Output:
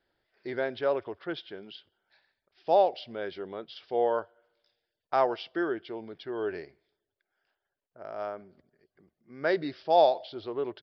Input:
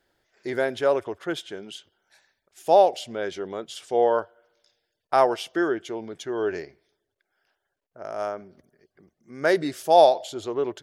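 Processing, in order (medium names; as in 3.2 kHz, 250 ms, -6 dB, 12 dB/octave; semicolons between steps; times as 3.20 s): resampled via 11.025 kHz; trim -6 dB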